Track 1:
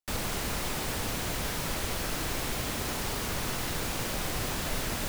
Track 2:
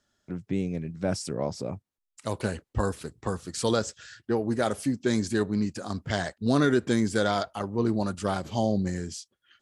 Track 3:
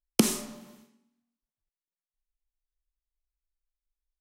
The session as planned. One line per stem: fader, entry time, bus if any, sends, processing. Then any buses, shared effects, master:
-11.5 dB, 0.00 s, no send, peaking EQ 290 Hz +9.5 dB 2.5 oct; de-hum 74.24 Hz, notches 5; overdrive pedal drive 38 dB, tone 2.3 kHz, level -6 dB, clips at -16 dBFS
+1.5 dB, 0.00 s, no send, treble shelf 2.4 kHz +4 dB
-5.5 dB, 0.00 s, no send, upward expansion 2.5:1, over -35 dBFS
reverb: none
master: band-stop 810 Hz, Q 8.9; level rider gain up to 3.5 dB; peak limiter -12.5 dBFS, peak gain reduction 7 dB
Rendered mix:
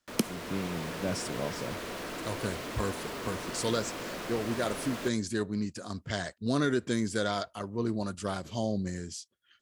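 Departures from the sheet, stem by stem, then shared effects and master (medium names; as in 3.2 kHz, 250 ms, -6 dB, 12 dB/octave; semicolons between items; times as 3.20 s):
stem 1 -11.5 dB -> -17.5 dB; stem 2 +1.5 dB -> -9.0 dB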